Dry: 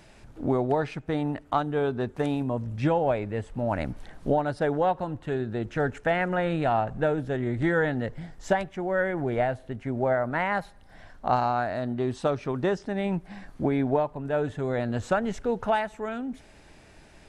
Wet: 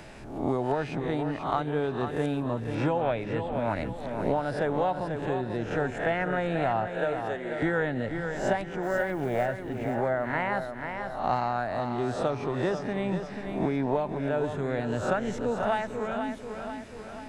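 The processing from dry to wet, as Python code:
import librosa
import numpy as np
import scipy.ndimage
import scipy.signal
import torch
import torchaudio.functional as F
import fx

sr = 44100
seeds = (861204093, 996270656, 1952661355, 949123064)

y = fx.spec_swells(x, sr, rise_s=0.48)
y = fx.high_shelf_res(y, sr, hz=4600.0, db=-9.0, q=3.0, at=(3.01, 3.52))
y = fx.highpass(y, sr, hz=470.0, slope=12, at=(6.86, 7.62))
y = fx.quant_float(y, sr, bits=4, at=(8.83, 9.46))
y = fx.echo_feedback(y, sr, ms=488, feedback_pct=42, wet_db=-9)
y = fx.band_squash(y, sr, depth_pct=40)
y = y * 10.0 ** (-3.5 / 20.0)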